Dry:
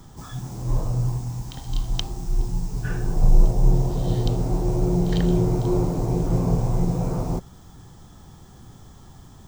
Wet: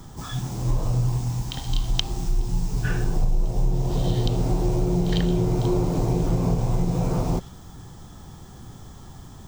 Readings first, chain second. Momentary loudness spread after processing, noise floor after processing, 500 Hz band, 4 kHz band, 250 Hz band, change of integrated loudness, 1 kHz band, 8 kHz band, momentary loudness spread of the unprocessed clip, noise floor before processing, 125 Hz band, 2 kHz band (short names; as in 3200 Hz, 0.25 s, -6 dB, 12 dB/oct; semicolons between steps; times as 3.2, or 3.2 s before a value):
21 LU, -43 dBFS, -0.5 dB, +5.0 dB, -0.5 dB, -0.5 dB, +0.5 dB, +2.0 dB, 11 LU, -47 dBFS, -0.5 dB, +3.5 dB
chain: dynamic EQ 3100 Hz, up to +6 dB, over -54 dBFS, Q 0.96; compressor 6:1, threshold -21 dBFS, peak gain reduction 12 dB; gain +3.5 dB